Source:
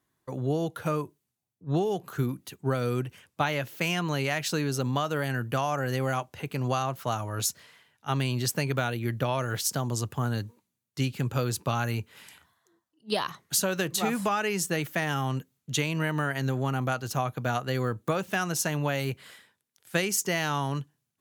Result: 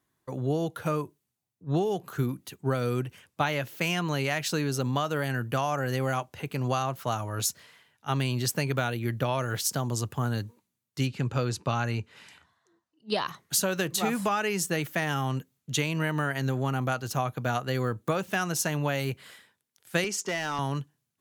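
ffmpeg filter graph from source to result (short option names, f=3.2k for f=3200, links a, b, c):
-filter_complex "[0:a]asettb=1/sr,asplit=3[a][b][c];[a]atrim=end=11.074[d];[b]atrim=start=11.07:end=13.27,asetpts=PTS-STARTPTS,afade=t=in:d=0.004:c=qsin,afade=t=out:st=2.196:d=0.004:c=qsin,lowpass=6.6k,bandreject=f=3.3k:w=19[e];[c]atrim=start=13.266[f];[d][e]acrossfade=d=0.004:c1=hsin:c2=qsin[g];[g][f]acrossfade=d=0.004:c1=qsin:c2=hsin,asettb=1/sr,asplit=3[h][i][j];[h]atrim=end=20.044[k];[i]atrim=start=20.04:end=20.59,asetpts=PTS-STARTPTS,afade=t=in:d=0.004:c=qsin,afade=t=out:st=0.546:d=0.004:c=qsin,highpass=220,lowpass=6.5k,volume=24.5dB,asoftclip=hard,volume=-24.5dB[l];[j]atrim=start=20.586[m];[k][l]acrossfade=d=0.004:c1=hsin:c2=qsin[n];[n][m]acrossfade=d=0.004:c1=qsin:c2=hsin"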